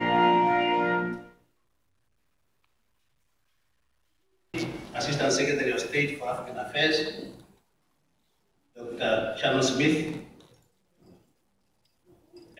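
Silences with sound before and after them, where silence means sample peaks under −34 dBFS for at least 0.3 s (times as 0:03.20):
0:01.19–0:04.54
0:07.29–0:08.80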